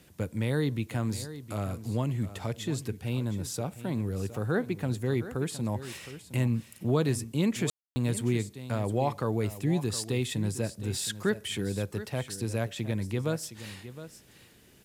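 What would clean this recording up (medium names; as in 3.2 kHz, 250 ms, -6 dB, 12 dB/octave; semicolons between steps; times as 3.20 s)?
room tone fill 7.70–7.96 s; expander -44 dBFS, range -21 dB; inverse comb 714 ms -13.5 dB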